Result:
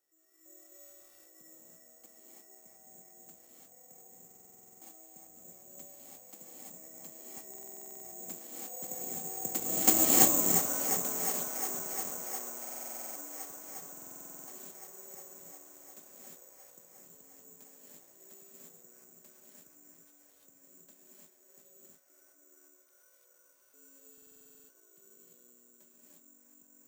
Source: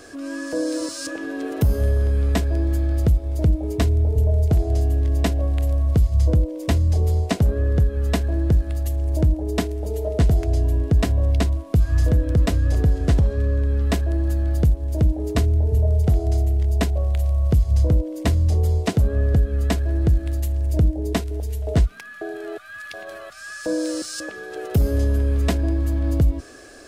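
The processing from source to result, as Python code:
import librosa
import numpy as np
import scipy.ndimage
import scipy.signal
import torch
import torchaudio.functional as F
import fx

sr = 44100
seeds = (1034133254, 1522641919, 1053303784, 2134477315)

p1 = fx.doppler_pass(x, sr, speed_mps=46, closest_m=2.7, pass_at_s=10.01)
p2 = scipy.signal.sosfilt(scipy.signal.butter(4, 210.0, 'highpass', fs=sr, output='sos'), p1)
p3 = p2 + fx.echo_wet_bandpass(p2, sr, ms=355, feedback_pct=82, hz=1200.0, wet_db=-5, dry=0)
p4 = fx.rev_gated(p3, sr, seeds[0], gate_ms=370, shape='rising', drr_db=-6.5)
p5 = (np.kron(p4[::6], np.eye(6)[0]) * 6)[:len(p4)]
y = fx.buffer_glitch(p5, sr, at_s=(4.26, 7.49, 12.6, 13.92, 24.13), block=2048, repeats=11)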